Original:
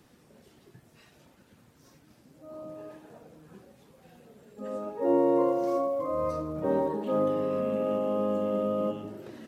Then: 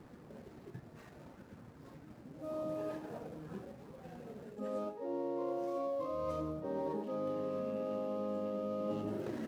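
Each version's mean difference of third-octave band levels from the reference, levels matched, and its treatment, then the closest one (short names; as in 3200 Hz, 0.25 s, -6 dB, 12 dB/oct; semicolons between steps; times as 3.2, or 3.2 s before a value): 6.5 dB: median filter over 15 samples; reverse; compressor 16:1, threshold -40 dBFS, peak gain reduction 21 dB; reverse; gain +5.5 dB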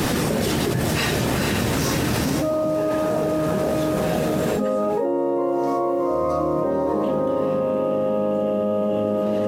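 13.0 dB: on a send: diffused feedback echo 0.48 s, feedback 63%, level -5 dB; on the sum: fast leveller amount 100%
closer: first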